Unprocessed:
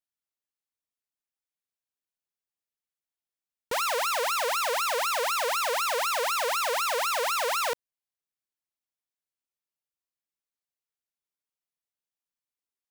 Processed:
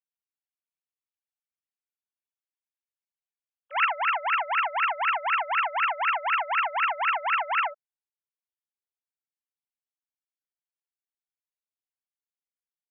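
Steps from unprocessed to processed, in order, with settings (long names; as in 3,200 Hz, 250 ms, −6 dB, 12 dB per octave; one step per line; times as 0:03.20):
three sine waves on the formant tracks
tilt shelving filter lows −9 dB, about 890 Hz, from 0:03.84 lows −4 dB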